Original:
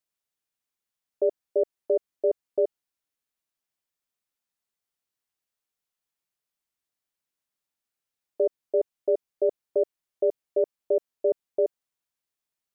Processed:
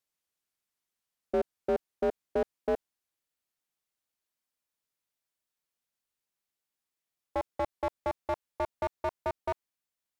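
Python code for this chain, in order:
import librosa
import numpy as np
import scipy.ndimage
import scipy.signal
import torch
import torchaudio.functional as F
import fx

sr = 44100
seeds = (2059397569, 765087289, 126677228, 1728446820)

y = fx.speed_glide(x, sr, from_pct=86, to_pct=164)
y = fx.slew_limit(y, sr, full_power_hz=31.0)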